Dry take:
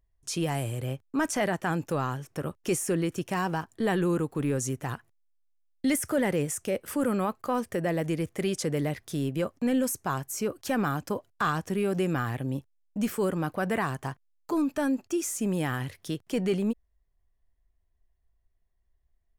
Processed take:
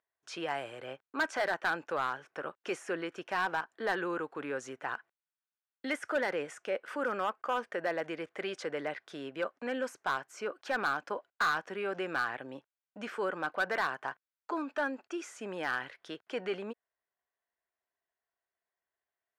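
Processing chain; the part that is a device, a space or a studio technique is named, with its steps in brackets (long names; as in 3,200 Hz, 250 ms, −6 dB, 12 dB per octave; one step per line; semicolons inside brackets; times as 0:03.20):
megaphone (band-pass filter 580–2,900 Hz; parametric band 1,500 Hz +7.5 dB 0.23 octaves; hard clipping −24 dBFS, distortion −14 dB)
0:07.05–0:07.52: notch filter 4,100 Hz, Q 5.2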